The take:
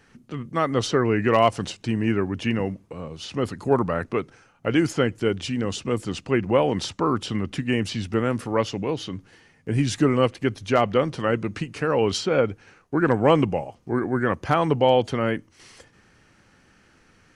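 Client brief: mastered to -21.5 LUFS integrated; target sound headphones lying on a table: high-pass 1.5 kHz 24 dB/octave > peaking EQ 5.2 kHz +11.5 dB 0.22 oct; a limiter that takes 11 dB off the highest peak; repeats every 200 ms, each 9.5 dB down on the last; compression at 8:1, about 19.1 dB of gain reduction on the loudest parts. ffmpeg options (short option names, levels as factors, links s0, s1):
-af "acompressor=threshold=0.02:ratio=8,alimiter=level_in=2:limit=0.0631:level=0:latency=1,volume=0.501,highpass=f=1500:w=0.5412,highpass=f=1500:w=1.3066,equalizer=f=5200:t=o:w=0.22:g=11.5,aecho=1:1:200|400|600|800:0.335|0.111|0.0365|0.012,volume=15"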